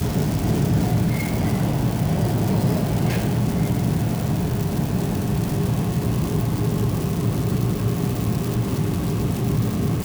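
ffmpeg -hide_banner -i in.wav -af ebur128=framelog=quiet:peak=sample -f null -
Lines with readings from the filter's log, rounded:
Integrated loudness:
  I:         -22.1 LUFS
  Threshold: -32.1 LUFS
Loudness range:
  LRA:         1.5 LU
  Threshold: -42.2 LUFS
  LRA low:   -22.8 LUFS
  LRA high:  -21.3 LUFS
Sample peak:
  Peak:       -9.8 dBFS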